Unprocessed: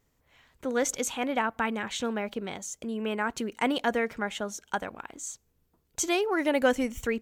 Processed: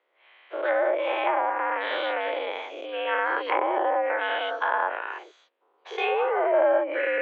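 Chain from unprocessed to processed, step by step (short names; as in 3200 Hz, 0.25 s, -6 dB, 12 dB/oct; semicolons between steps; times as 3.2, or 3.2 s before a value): spectral dilation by 0.24 s; mistuned SSB +75 Hz 350–3300 Hz; treble ducked by the level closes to 860 Hz, closed at -17.5 dBFS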